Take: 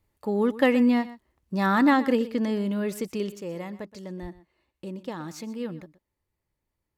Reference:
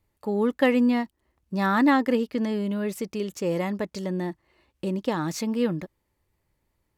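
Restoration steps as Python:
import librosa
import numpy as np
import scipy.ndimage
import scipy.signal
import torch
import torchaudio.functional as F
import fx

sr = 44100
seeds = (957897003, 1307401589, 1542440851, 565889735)

y = fx.fix_deplosive(x, sr, at_s=(4.21,))
y = fx.fix_echo_inverse(y, sr, delay_ms=123, level_db=-16.5)
y = fx.gain(y, sr, db=fx.steps((0.0, 0.0), (3.34, 8.5)))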